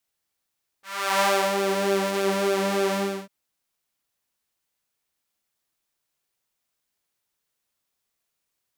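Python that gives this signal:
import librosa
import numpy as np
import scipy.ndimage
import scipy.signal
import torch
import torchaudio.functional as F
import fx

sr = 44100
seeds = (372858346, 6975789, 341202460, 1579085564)

y = fx.sub_patch_pwm(sr, seeds[0], note=55, wave2='saw', interval_st=0, detune_cents=24, level2_db=-6, sub_db=-17.0, noise_db=-30.0, kind='highpass', cutoff_hz=240.0, q=1.4, env_oct=2.5, env_decay_s=0.89, env_sustain_pct=25, attack_ms=381.0, decay_s=0.34, sustain_db=-7, release_s=0.34, note_s=2.11, lfo_hz=3.4, width_pct=36, width_swing_pct=17)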